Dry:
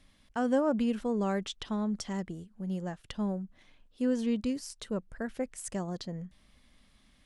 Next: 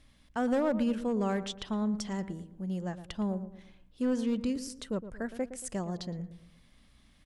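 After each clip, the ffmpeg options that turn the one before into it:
-filter_complex "[0:a]asoftclip=type=hard:threshold=-23dB,aeval=exprs='val(0)+0.000501*(sin(2*PI*60*n/s)+sin(2*PI*2*60*n/s)/2+sin(2*PI*3*60*n/s)/3+sin(2*PI*4*60*n/s)/4+sin(2*PI*5*60*n/s)/5)':c=same,asplit=2[a][b];[b]adelay=114,lowpass=f=1.2k:p=1,volume=-11.5dB,asplit=2[c][d];[d]adelay=114,lowpass=f=1.2k:p=1,volume=0.44,asplit=2[e][f];[f]adelay=114,lowpass=f=1.2k:p=1,volume=0.44,asplit=2[g][h];[h]adelay=114,lowpass=f=1.2k:p=1,volume=0.44[i];[a][c][e][g][i]amix=inputs=5:normalize=0"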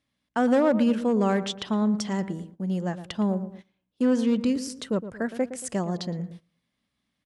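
-af "agate=range=-20dB:threshold=-48dB:ratio=16:detection=peak,highpass=120,highshelf=f=10k:g=-6.5,volume=7.5dB"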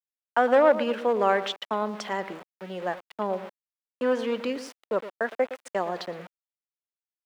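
-filter_complex "[0:a]agate=range=-19dB:threshold=-33dB:ratio=16:detection=peak,aeval=exprs='val(0)*gte(abs(val(0)),0.01)':c=same,acrossover=split=420 3400:gain=0.0631 1 0.158[a][b][c];[a][b][c]amix=inputs=3:normalize=0,volume=6dB"

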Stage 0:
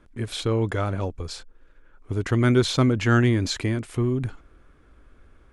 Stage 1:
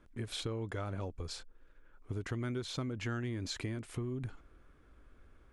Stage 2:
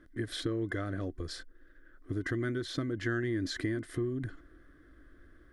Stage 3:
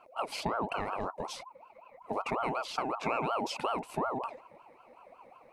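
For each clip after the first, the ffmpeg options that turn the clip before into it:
-af "acompressor=threshold=-28dB:ratio=6,volume=-7dB"
-af "superequalizer=6b=2.82:9b=0.282:11b=2.51:12b=0.447:15b=0.631,volume=1.5dB"
-af "aeval=exprs='val(0)*sin(2*PI*780*n/s+780*0.35/5.4*sin(2*PI*5.4*n/s))':c=same,volume=3dB"

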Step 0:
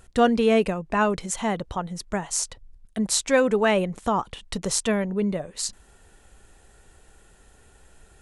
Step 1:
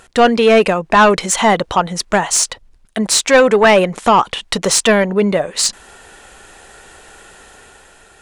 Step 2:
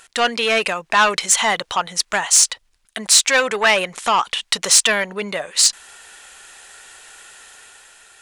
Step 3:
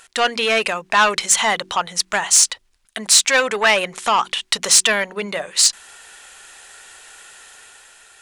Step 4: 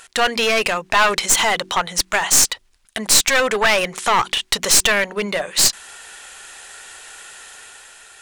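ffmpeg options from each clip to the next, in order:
-filter_complex "[0:a]dynaudnorm=f=150:g=9:m=5dB,asplit=2[a][b];[b]highpass=f=720:p=1,volume=18dB,asoftclip=type=tanh:threshold=-1.5dB[c];[a][c]amix=inputs=2:normalize=0,lowpass=f=4.8k:p=1,volume=-6dB,volume=2.5dB"
-af "tiltshelf=f=840:g=-9.5,volume=-7dB"
-af "bandreject=f=46.79:t=h:w=4,bandreject=f=93.58:t=h:w=4,bandreject=f=140.37:t=h:w=4,bandreject=f=187.16:t=h:w=4,bandreject=f=233.95:t=h:w=4,bandreject=f=280.74:t=h:w=4,bandreject=f=327.53:t=h:w=4,bandreject=f=374.32:t=h:w=4"
-filter_complex "[0:a]asplit=2[a][b];[b]alimiter=limit=-9.5dB:level=0:latency=1,volume=-3dB[c];[a][c]amix=inputs=2:normalize=0,aeval=exprs='clip(val(0),-1,0.178)':c=same,volume=-1dB"

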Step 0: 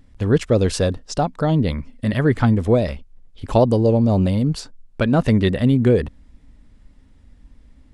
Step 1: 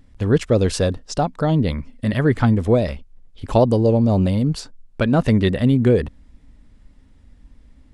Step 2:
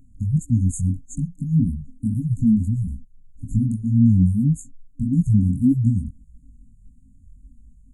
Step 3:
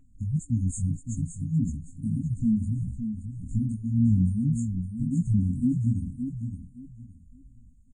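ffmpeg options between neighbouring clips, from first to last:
-af anull
-af "afftfilt=real='re*(1-between(b*sr/4096,290,6400))':imag='im*(1-between(b*sr/4096,290,6400))':win_size=4096:overlap=0.75,flanger=delay=17:depth=6.4:speed=1.7,afftfilt=real='re*(1-between(b*sr/1024,260*pow(2300/260,0.5+0.5*sin(2*PI*2*pts/sr))/1.41,260*pow(2300/260,0.5+0.5*sin(2*PI*2*pts/sr))*1.41))':imag='im*(1-between(b*sr/1024,260*pow(2300/260,0.5+0.5*sin(2*PI*2*pts/sr))/1.41,260*pow(2300/260,0.5+0.5*sin(2*PI*2*pts/sr))*1.41))':win_size=1024:overlap=0.75,volume=3dB"
-filter_complex "[0:a]asplit=2[a][b];[b]aecho=0:1:566|1132|1698:0.398|0.0995|0.0249[c];[a][c]amix=inputs=2:normalize=0,volume=-7dB" -ar 22050 -c:a libvorbis -b:a 16k

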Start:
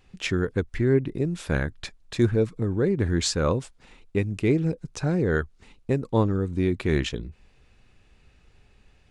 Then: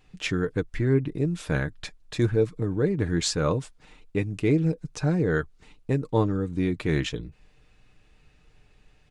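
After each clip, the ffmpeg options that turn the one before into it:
-af "aecho=1:1:6.6:0.41,volume=-1.5dB"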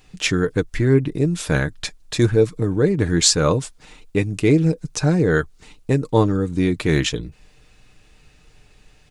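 -af "bass=f=250:g=-1,treble=f=4k:g=7,volume=7dB"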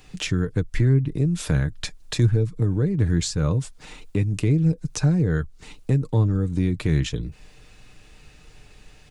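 -filter_complex "[0:a]acrossover=split=170[a][b];[b]acompressor=threshold=-31dB:ratio=6[c];[a][c]amix=inputs=2:normalize=0,volume=3dB"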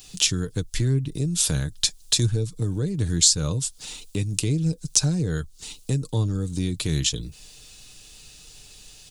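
-af "aexciter=amount=7.4:drive=2.3:freq=3k,volume=-4dB"

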